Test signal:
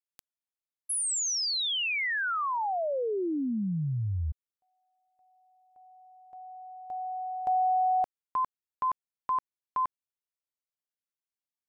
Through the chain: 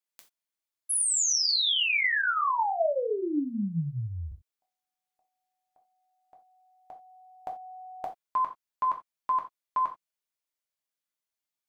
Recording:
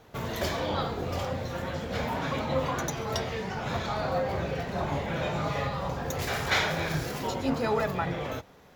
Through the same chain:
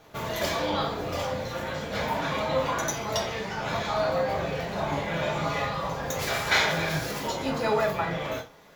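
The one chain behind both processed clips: low shelf 450 Hz -5 dB; non-linear reverb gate 0.11 s falling, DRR 1 dB; gain +1.5 dB

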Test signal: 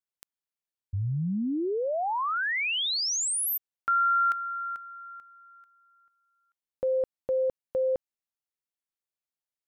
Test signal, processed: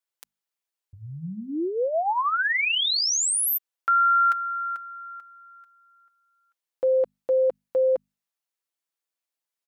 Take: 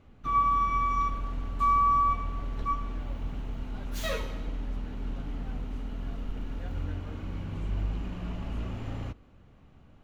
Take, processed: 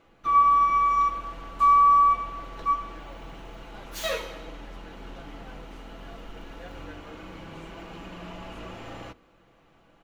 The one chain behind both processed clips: tone controls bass -14 dB, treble 0 dB; notches 50/100/150/200/250 Hz; comb 6 ms, depth 41%; gain +4 dB

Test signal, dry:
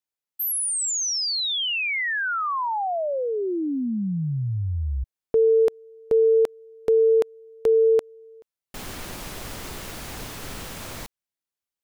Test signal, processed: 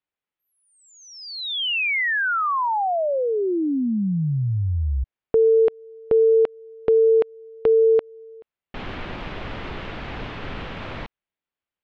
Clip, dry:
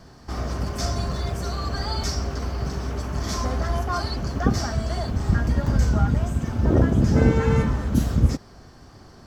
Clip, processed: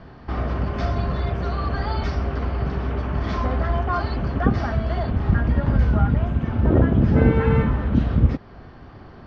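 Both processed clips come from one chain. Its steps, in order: in parallel at -3 dB: compressor, threshold -27 dBFS; on the sum: LPF 3200 Hz 24 dB/oct

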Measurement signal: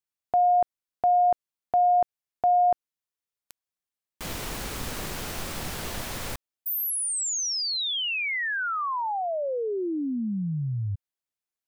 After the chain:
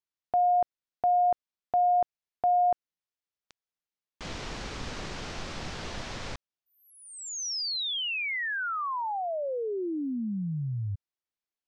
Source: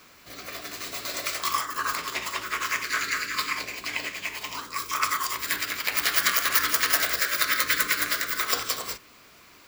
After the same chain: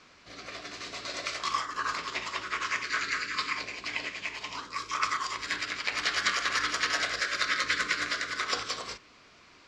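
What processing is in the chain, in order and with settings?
LPF 6200 Hz 24 dB/oct; gain -3 dB

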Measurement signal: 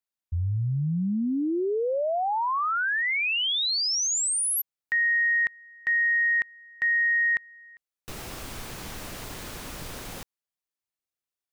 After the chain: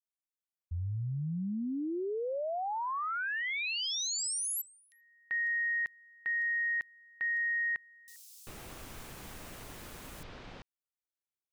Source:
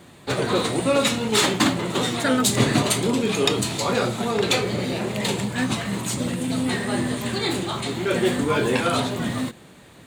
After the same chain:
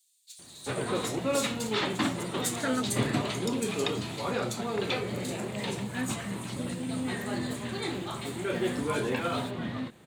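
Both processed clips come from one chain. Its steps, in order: bands offset in time highs, lows 0.39 s, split 4700 Hz; gain -8.5 dB

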